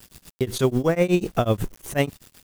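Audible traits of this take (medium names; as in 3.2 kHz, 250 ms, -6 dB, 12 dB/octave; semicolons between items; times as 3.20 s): a quantiser's noise floor 8-bit, dither none; tremolo triangle 8.1 Hz, depth 100%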